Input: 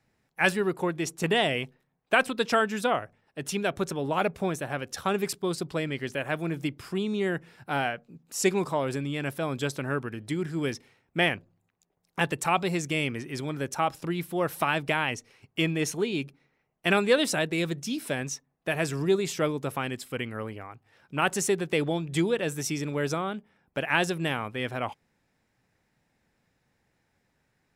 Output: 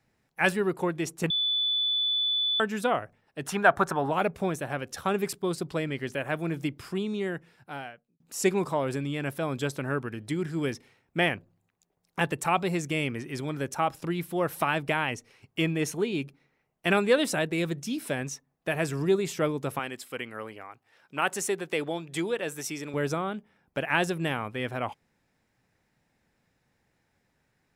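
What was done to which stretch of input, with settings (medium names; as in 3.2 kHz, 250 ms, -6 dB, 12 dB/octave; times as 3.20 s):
1.30–2.60 s: bleep 3.48 kHz -20.5 dBFS
3.47–4.11 s: high-order bell 1.1 kHz +13 dB
6.82–8.20 s: fade out
19.79–22.94 s: high-pass 450 Hz 6 dB/octave
whole clip: dynamic bell 4.8 kHz, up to -4 dB, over -42 dBFS, Q 0.73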